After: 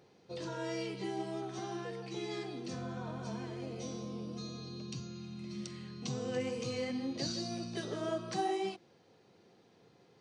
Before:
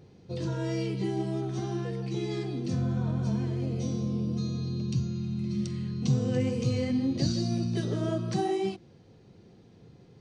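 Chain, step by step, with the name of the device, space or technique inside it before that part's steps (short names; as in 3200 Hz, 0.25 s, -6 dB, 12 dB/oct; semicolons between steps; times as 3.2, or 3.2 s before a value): filter by subtraction (in parallel: LPF 880 Hz 12 dB/oct + phase invert); on the sum: gain -2.5 dB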